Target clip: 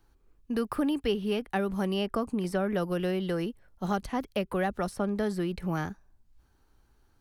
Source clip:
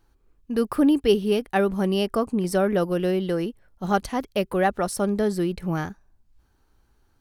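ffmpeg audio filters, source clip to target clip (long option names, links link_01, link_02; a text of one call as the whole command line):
ffmpeg -i in.wav -filter_complex "[0:a]acrossover=split=290|620|3200[link_01][link_02][link_03][link_04];[link_01]acompressor=threshold=-29dB:ratio=4[link_05];[link_02]acompressor=threshold=-36dB:ratio=4[link_06];[link_03]acompressor=threshold=-30dB:ratio=4[link_07];[link_04]acompressor=threshold=-48dB:ratio=4[link_08];[link_05][link_06][link_07][link_08]amix=inputs=4:normalize=0,volume=-1.5dB" out.wav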